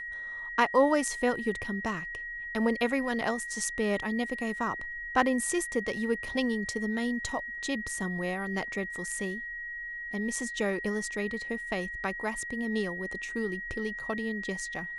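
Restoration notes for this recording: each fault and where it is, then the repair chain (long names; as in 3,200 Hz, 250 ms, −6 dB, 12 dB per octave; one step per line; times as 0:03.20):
whistle 1,900 Hz −36 dBFS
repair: notch filter 1,900 Hz, Q 30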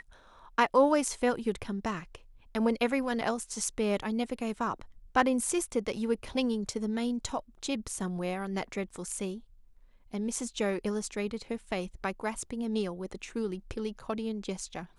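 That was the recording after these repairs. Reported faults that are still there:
none of them is left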